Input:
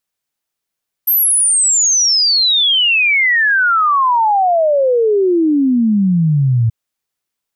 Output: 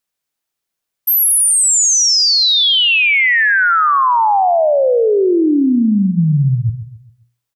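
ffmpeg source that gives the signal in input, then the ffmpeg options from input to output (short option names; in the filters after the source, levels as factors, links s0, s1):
-f lavfi -i "aevalsrc='0.335*clip(min(t,5.63-t)/0.01,0,1)*sin(2*PI*13000*5.63/log(110/13000)*(exp(log(110/13000)*t/5.63)-1))':d=5.63:s=44100"
-filter_complex "[0:a]bandreject=f=60:t=h:w=6,bandreject=f=120:t=h:w=6,bandreject=f=180:t=h:w=6,asplit=2[s0][s1];[s1]aecho=0:1:134|268|402|536:0.251|0.098|0.0382|0.0149[s2];[s0][s2]amix=inputs=2:normalize=0"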